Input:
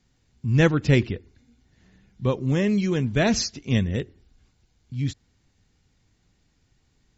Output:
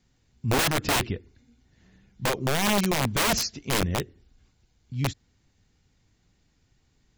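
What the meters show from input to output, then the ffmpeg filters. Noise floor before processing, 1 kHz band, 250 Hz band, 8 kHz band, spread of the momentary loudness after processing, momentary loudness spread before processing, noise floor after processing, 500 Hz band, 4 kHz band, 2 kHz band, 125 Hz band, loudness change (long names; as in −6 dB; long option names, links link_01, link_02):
−67 dBFS, +7.0 dB, −6.5 dB, can't be measured, 11 LU, 13 LU, −68 dBFS, −4.0 dB, +4.5 dB, +1.0 dB, −7.0 dB, −2.0 dB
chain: -af "aeval=exprs='0.562*(cos(1*acos(clip(val(0)/0.562,-1,1)))-cos(1*PI/2))+0.02*(cos(3*acos(clip(val(0)/0.562,-1,1)))-cos(3*PI/2))+0.00398*(cos(6*acos(clip(val(0)/0.562,-1,1)))-cos(6*PI/2))':channel_layout=same,aeval=exprs='(mod(7.94*val(0)+1,2)-1)/7.94':channel_layout=same"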